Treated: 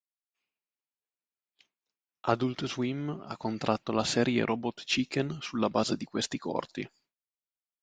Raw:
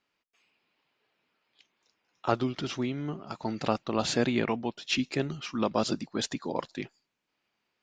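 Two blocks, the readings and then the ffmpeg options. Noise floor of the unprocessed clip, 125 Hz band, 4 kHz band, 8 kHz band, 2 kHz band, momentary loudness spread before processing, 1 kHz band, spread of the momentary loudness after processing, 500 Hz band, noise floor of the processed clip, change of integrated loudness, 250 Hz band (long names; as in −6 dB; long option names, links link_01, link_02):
−81 dBFS, 0.0 dB, 0.0 dB, 0.0 dB, 0.0 dB, 9 LU, 0.0 dB, 9 LU, 0.0 dB, below −85 dBFS, 0.0 dB, 0.0 dB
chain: -af "agate=range=-33dB:threshold=-59dB:ratio=3:detection=peak"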